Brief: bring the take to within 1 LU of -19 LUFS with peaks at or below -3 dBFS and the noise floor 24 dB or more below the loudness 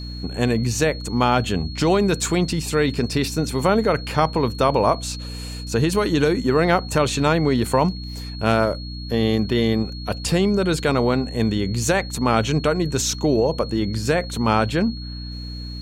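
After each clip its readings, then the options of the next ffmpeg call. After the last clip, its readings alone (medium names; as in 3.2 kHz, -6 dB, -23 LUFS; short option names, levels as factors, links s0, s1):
hum 60 Hz; highest harmonic 300 Hz; hum level -30 dBFS; steady tone 4.3 kHz; tone level -37 dBFS; loudness -21.0 LUFS; peak level -2.5 dBFS; loudness target -19.0 LUFS
-> -af "bandreject=f=60:t=h:w=6,bandreject=f=120:t=h:w=6,bandreject=f=180:t=h:w=6,bandreject=f=240:t=h:w=6,bandreject=f=300:t=h:w=6"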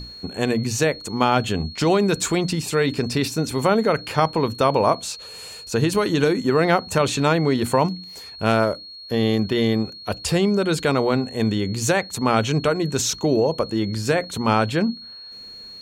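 hum not found; steady tone 4.3 kHz; tone level -37 dBFS
-> -af "bandreject=f=4300:w=30"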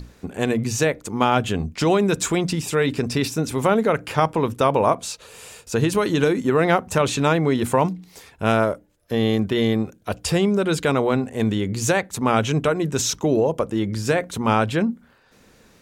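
steady tone not found; loudness -21.5 LUFS; peak level -2.5 dBFS; loudness target -19.0 LUFS
-> -af "volume=1.33,alimiter=limit=0.708:level=0:latency=1"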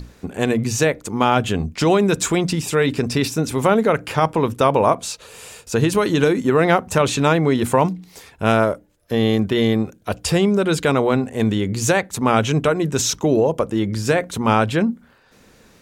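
loudness -19.0 LUFS; peak level -3.0 dBFS; noise floor -52 dBFS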